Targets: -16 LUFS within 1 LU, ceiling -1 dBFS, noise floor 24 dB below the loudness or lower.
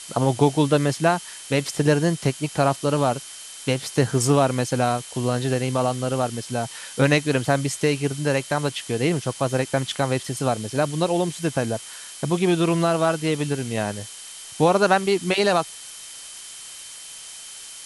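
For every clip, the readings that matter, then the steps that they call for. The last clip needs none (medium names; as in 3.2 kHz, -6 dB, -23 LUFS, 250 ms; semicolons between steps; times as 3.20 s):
steady tone 3.1 kHz; tone level -46 dBFS; noise floor -40 dBFS; noise floor target -47 dBFS; loudness -22.5 LUFS; peak level -3.5 dBFS; loudness target -16.0 LUFS
-> band-stop 3.1 kHz, Q 30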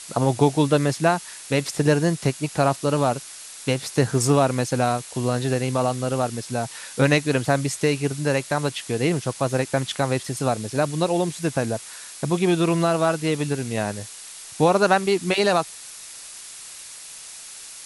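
steady tone not found; noise floor -40 dBFS; noise floor target -47 dBFS
-> noise print and reduce 7 dB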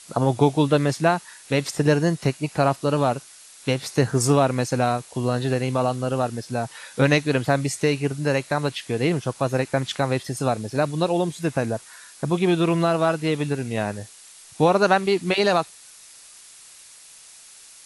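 noise floor -47 dBFS; loudness -22.5 LUFS; peak level -3.5 dBFS; loudness target -16.0 LUFS
-> trim +6.5 dB; peak limiter -1 dBFS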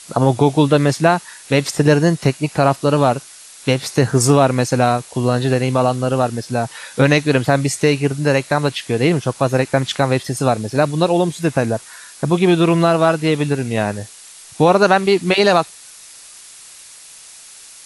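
loudness -16.5 LUFS; peak level -1.0 dBFS; noise floor -41 dBFS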